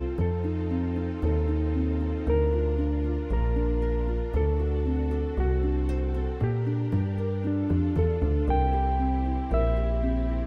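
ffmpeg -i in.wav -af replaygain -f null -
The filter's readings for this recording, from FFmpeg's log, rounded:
track_gain = +11.5 dB
track_peak = 0.170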